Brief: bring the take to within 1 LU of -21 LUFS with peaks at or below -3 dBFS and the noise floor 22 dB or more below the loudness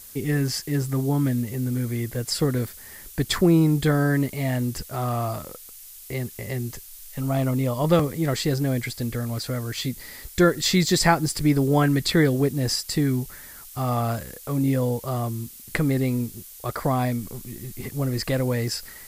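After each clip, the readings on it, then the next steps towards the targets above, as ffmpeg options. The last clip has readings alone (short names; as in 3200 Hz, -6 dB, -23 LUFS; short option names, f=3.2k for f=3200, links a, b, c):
noise floor -44 dBFS; noise floor target -46 dBFS; loudness -24.0 LUFS; peak -4.5 dBFS; loudness target -21.0 LUFS
-> -af "afftdn=nr=6:nf=-44"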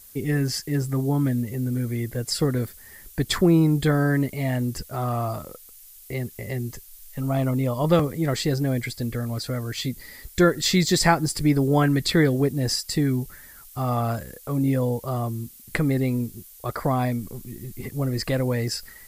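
noise floor -47 dBFS; loudness -24.0 LUFS; peak -4.5 dBFS; loudness target -21.0 LUFS
-> -af "volume=3dB,alimiter=limit=-3dB:level=0:latency=1"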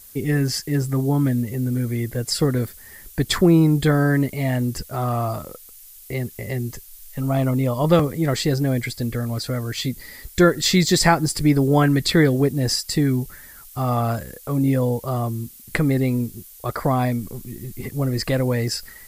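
loudness -21.0 LUFS; peak -3.0 dBFS; noise floor -44 dBFS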